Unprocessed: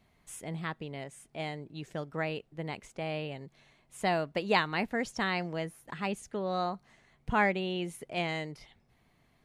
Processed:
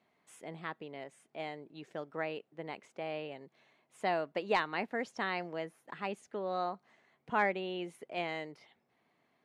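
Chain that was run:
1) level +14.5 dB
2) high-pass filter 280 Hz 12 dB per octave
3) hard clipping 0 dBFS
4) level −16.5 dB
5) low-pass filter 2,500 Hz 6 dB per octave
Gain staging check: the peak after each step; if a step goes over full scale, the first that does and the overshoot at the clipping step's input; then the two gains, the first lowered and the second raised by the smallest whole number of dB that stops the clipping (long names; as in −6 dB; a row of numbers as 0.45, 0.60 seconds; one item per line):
+3.0, +4.5, 0.0, −16.5, −17.0 dBFS
step 1, 4.5 dB
step 1 +9.5 dB, step 4 −11.5 dB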